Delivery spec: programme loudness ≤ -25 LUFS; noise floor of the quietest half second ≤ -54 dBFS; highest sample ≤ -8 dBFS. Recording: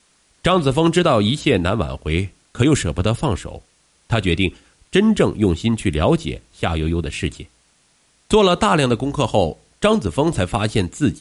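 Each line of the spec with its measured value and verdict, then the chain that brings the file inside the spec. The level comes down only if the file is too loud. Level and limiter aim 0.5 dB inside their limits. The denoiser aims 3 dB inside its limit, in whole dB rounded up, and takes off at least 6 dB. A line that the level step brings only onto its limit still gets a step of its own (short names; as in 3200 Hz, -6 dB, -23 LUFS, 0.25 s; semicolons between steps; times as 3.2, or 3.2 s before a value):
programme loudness -19.0 LUFS: fail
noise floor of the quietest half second -59 dBFS: OK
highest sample -3.5 dBFS: fail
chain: gain -6.5 dB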